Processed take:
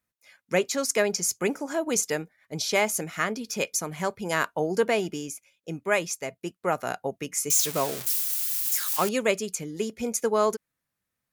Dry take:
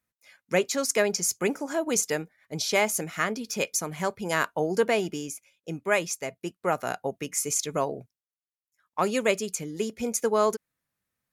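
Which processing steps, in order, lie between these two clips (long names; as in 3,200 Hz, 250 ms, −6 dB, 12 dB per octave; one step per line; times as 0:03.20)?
0:07.50–0:09.09: spike at every zero crossing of −19 dBFS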